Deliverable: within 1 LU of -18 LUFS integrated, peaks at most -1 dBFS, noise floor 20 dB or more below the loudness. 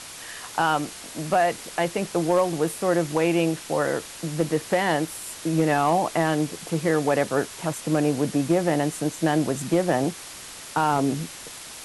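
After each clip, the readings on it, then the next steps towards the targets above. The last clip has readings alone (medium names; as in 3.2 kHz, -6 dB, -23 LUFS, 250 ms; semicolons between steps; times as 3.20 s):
clipped samples 0.3%; clipping level -11.5 dBFS; noise floor -40 dBFS; noise floor target -45 dBFS; loudness -24.5 LUFS; peak level -11.5 dBFS; loudness target -18.0 LUFS
-> clip repair -11.5 dBFS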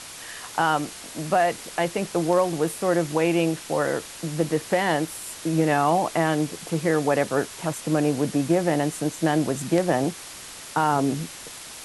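clipped samples 0.0%; noise floor -40 dBFS; noise floor target -44 dBFS
-> noise reduction 6 dB, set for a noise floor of -40 dBFS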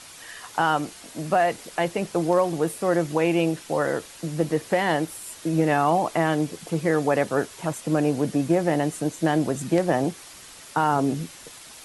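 noise floor -45 dBFS; loudness -24.0 LUFS; peak level -6.0 dBFS; loudness target -18.0 LUFS
-> trim +6 dB; peak limiter -1 dBFS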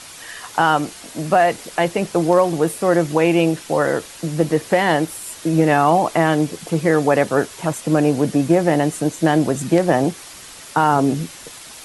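loudness -18.0 LUFS; peak level -1.0 dBFS; noise floor -39 dBFS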